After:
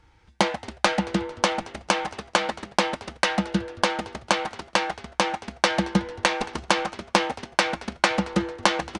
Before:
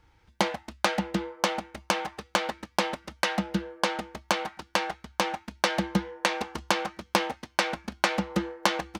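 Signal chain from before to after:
0:02.22–0:02.75: mains-hum notches 50/100/150/200 Hz
echo with shifted repeats 224 ms, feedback 54%, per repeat −97 Hz, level −21 dB
downsampling to 22,050 Hz
level +4 dB

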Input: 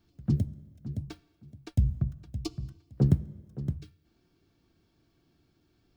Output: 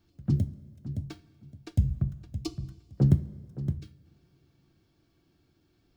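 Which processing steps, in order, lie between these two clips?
coupled-rooms reverb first 0.28 s, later 2.7 s, from −20 dB, DRR 11 dB

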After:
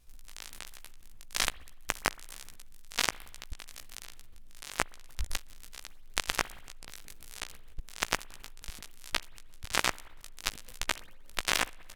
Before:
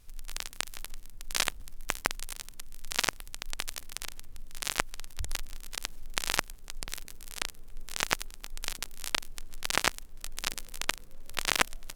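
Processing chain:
chorus effect 1.2 Hz, delay 15 ms, depth 4.4 ms
spring reverb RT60 1.3 s, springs 58 ms, chirp 30 ms, DRR 18 dB
output level in coarse steps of 17 dB
level +6 dB

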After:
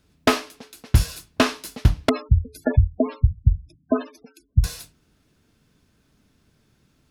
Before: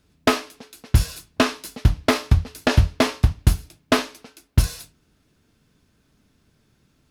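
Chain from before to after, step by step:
0:02.09–0:04.64: gate on every frequency bin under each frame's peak −10 dB strong

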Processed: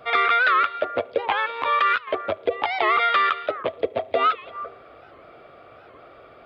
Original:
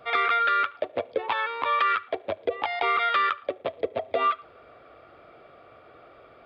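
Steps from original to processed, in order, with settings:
echo through a band-pass that steps 168 ms, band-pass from 3,300 Hz, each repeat −1.4 octaves, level −11 dB
0:01.40–0:02.08: transient designer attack −3 dB, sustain −8 dB
wow of a warped record 78 rpm, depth 160 cents
level +4 dB

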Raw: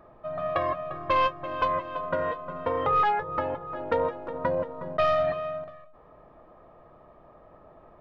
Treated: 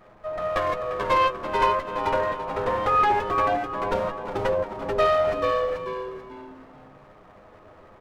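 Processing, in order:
lower of the sound and its delayed copy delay 9.6 ms
echo with shifted repeats 437 ms, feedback 30%, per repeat −120 Hz, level −4 dB
level +3 dB

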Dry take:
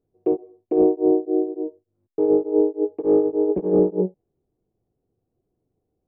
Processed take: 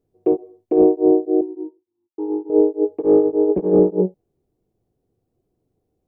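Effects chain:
0:01.41–0:02.50: pair of resonant band-passes 560 Hz, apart 1.4 octaves
level +3.5 dB

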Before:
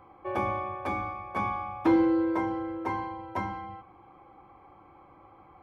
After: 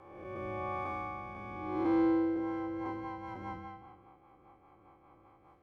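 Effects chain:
spectrum smeared in time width 384 ms
rotating-speaker cabinet horn 0.9 Hz, later 5 Hz, at 0:02.12
level −2 dB

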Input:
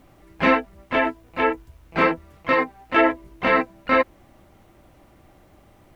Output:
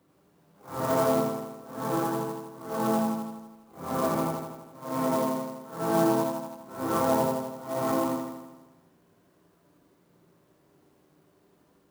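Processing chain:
random phases in long frames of 200 ms
high-pass filter 350 Hz 12 dB per octave
on a send: flutter between parallel walls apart 7 metres, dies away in 0.58 s
on the sum: wrong playback speed 15 ips tape played at 7.5 ips
converter with an unsteady clock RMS 0.04 ms
level −7.5 dB

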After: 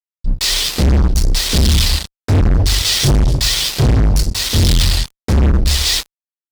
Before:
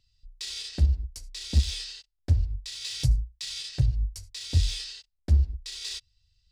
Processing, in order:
rectangular room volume 130 cubic metres, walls furnished, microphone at 3.6 metres
pitch vibrato 14 Hz 86 cents
double-tracking delay 27 ms −12 dB
single-tap delay 249 ms −18.5 dB
fuzz pedal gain 28 dB, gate −33 dBFS
level +4 dB

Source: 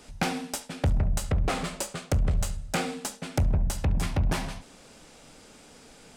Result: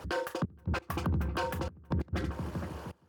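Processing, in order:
spectral envelope exaggerated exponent 1.5
wrong playback speed 7.5 ips tape played at 15 ips
in parallel at 0 dB: downward compressor, threshold −38 dBFS, peak gain reduction 16.5 dB
on the sum: low-pass filter 3,400 Hz 6 dB per octave
on a send: delay with a low-pass on its return 468 ms, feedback 50%, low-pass 1,900 Hz, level −13 dB
on the sum: brickwall limiter −23 dBFS, peak gain reduction 10 dB
gate pattern "xxxx..x.xxx" 134 BPM −24 dB
high-pass filter 68 Hz

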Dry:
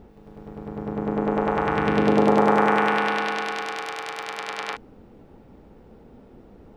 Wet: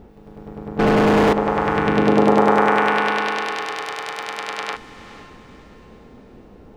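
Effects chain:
0:00.79–0:01.33: mid-hump overdrive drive 42 dB, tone 2,000 Hz, clips at −11.5 dBFS
feedback delay with all-pass diffusion 494 ms, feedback 43%, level −15 dB
level +3.5 dB

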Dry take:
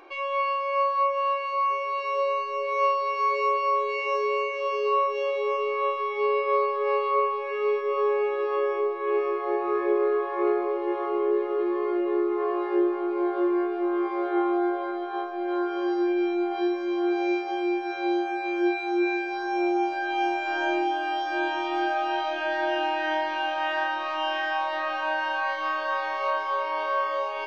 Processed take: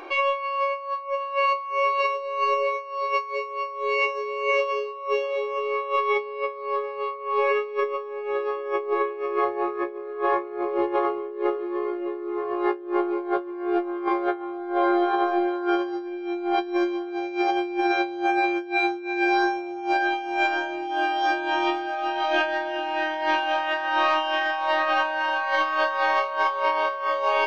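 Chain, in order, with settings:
compressor whose output falls as the input rises −30 dBFS, ratio −0.5
level +5.5 dB

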